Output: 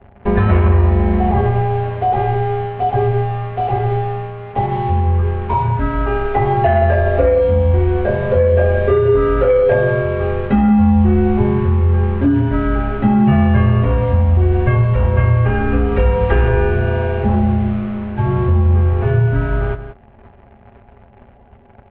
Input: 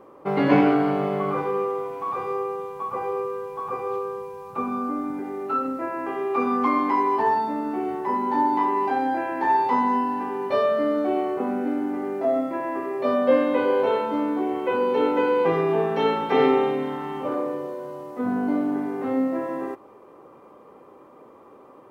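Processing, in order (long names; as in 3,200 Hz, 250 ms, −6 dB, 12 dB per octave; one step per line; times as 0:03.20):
comb filter 6.5 ms, depth 83%
leveller curve on the samples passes 2
downward compressor, threshold −14 dBFS, peak gain reduction 7.5 dB
single-tap delay 176 ms −11.5 dB
single-sideband voice off tune −380 Hz 190–3,500 Hz
level +4 dB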